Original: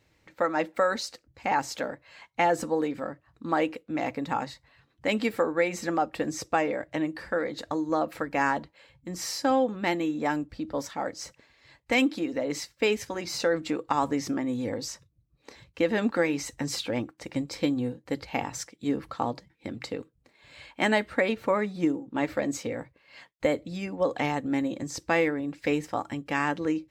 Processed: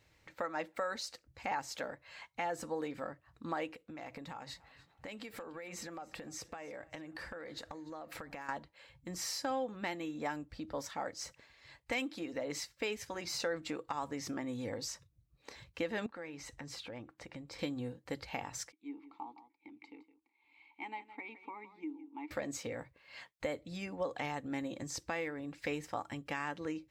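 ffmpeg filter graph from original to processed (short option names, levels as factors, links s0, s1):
-filter_complex "[0:a]asettb=1/sr,asplit=3[s0][s1][s2];[s0]atrim=end=3.734[s3];[s1]atrim=start=3.73:end=8.49,asetpts=PTS-STARTPTS,afade=t=in:d=0.004:c=qsin,afade=t=out:st=4.756:d=0.004:c=qsin,acompressor=threshold=0.0141:ratio=12:attack=3.2:release=140:knee=1:detection=peak,aecho=1:1:293|586|879:0.0794|0.0342|0.0147,atrim=end_sample=209916[s4];[s2]atrim=start=8.486[s5];[s3][s4]acrossfade=d=0.004:c1=hsin:c2=qsin[s6];[s6][s5]acrossfade=d=0.004:c1=qsin:c2=hsin,asettb=1/sr,asplit=3[s7][s8][s9];[s7]atrim=end=16.064[s10];[s8]atrim=start=16.06:end=17.59,asetpts=PTS-STARTPTS,afade=t=in:d=0.004:c=qsin,afade=t=out:st=1.526:d=0.004:c=qsin,highshelf=f=4800:g=-10.5,acompressor=threshold=0.00501:ratio=2:attack=3.2:release=140:knee=1:detection=peak[s11];[s9]atrim=start=17.586[s12];[s10][s11]acrossfade=d=0.004:c1=hsin:c2=qsin[s13];[s13][s12]acrossfade=d=0.004:c1=qsin:c2=hsin,asettb=1/sr,asplit=3[s14][s15][s16];[s14]atrim=end=18.724[s17];[s15]atrim=start=18.72:end=22.31,asetpts=PTS-STARTPTS,afade=t=in:d=0.004:c=qsin,afade=t=out:st=3.586:d=0.004:c=qsin,asplit=3[s18][s19][s20];[s18]bandpass=f=300:t=q:w=8,volume=1[s21];[s19]bandpass=f=870:t=q:w=8,volume=0.501[s22];[s20]bandpass=f=2240:t=q:w=8,volume=0.355[s23];[s21][s22][s23]amix=inputs=3:normalize=0,equalizer=f=140:w=0.9:g=-14.5,aecho=1:1:164:0.178,atrim=end_sample=158319[s24];[s16]atrim=start=22.306[s25];[s17][s24]acrossfade=d=0.004:c1=hsin:c2=qsin[s26];[s26][s25]acrossfade=d=0.004:c1=qsin:c2=hsin,equalizer=f=270:w=0.78:g=-5.5,alimiter=limit=0.133:level=0:latency=1:release=490,acompressor=threshold=0.00708:ratio=1.5,volume=0.891"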